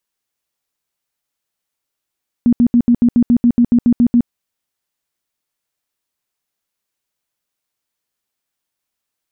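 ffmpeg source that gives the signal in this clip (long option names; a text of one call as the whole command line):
ffmpeg -f lavfi -i "aevalsrc='0.447*sin(2*PI*239*mod(t,0.14))*lt(mod(t,0.14),16/239)':duration=1.82:sample_rate=44100" out.wav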